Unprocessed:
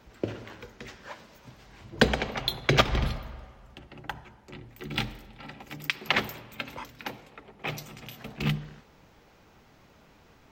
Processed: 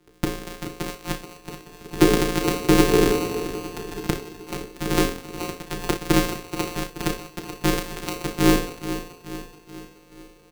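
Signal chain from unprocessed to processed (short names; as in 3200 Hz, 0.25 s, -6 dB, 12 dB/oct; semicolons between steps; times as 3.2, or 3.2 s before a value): sample sorter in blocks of 256 samples; sample leveller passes 2; early reflections 33 ms -8.5 dB, 60 ms -16.5 dB; AGC gain up to 9 dB; in parallel at +1 dB: limiter -12 dBFS, peak gain reduction 10.5 dB; on the sum: frequency shift -490 Hz; on a send: feedback echo 0.429 s, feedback 51%, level -11.5 dB; on the sum: gain -6.5 dB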